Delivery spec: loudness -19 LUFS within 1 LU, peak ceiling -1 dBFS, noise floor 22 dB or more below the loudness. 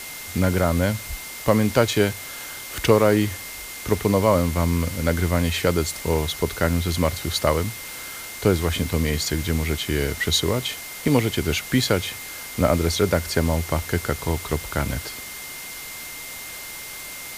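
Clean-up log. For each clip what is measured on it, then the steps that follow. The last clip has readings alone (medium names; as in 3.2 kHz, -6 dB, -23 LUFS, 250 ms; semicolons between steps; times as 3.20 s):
steady tone 2.1 kHz; tone level -39 dBFS; noise floor -36 dBFS; noise floor target -46 dBFS; loudness -23.5 LUFS; peak level -4.0 dBFS; loudness target -19.0 LUFS
-> band-stop 2.1 kHz, Q 30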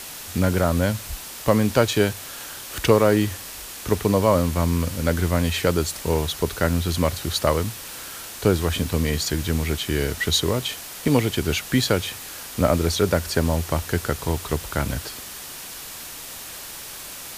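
steady tone not found; noise floor -37 dBFS; noise floor target -45 dBFS
-> noise reduction 8 dB, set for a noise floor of -37 dBFS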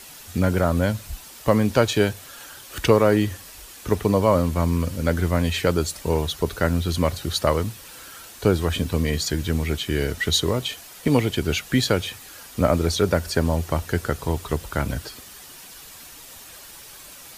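noise floor -43 dBFS; noise floor target -45 dBFS
-> noise reduction 6 dB, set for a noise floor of -43 dBFS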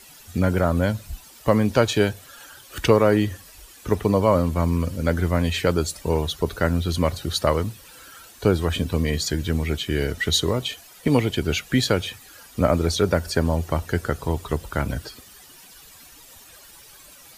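noise floor -48 dBFS; loudness -23.0 LUFS; peak level -4.0 dBFS; loudness target -19.0 LUFS
-> trim +4 dB; peak limiter -1 dBFS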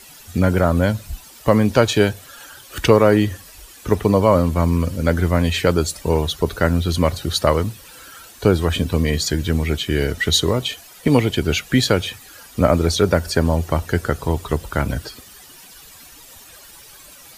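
loudness -19.0 LUFS; peak level -1.0 dBFS; noise floor -44 dBFS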